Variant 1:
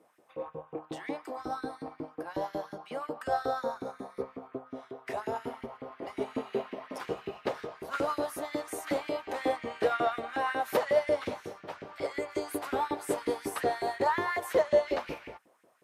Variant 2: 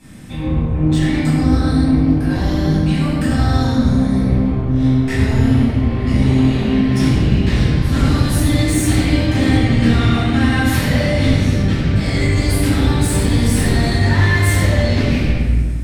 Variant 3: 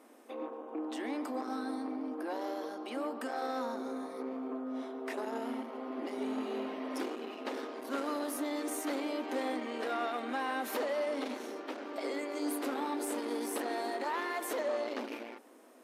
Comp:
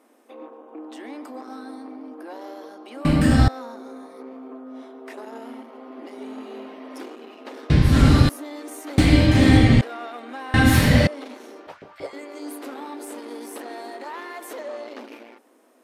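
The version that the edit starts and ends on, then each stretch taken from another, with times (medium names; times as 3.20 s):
3
3.05–3.48 s: from 2
7.70–8.29 s: from 2
8.98–9.81 s: from 2
10.54–11.07 s: from 2
11.67–12.13 s: from 1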